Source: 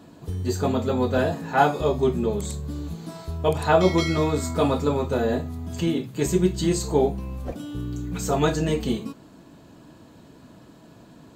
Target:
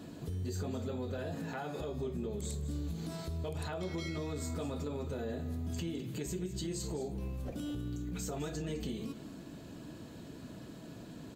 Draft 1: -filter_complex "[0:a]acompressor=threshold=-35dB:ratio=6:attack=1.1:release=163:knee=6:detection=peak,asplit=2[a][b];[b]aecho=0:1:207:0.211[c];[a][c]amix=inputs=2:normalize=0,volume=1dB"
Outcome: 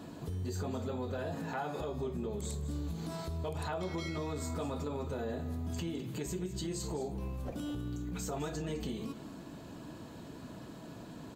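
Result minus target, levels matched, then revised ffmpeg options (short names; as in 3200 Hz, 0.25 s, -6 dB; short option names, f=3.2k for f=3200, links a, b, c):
1000 Hz band +4.0 dB
-filter_complex "[0:a]acompressor=threshold=-35dB:ratio=6:attack=1.1:release=163:knee=6:detection=peak,equalizer=f=960:t=o:w=0.99:g=-6.5,asplit=2[a][b];[b]aecho=0:1:207:0.211[c];[a][c]amix=inputs=2:normalize=0,volume=1dB"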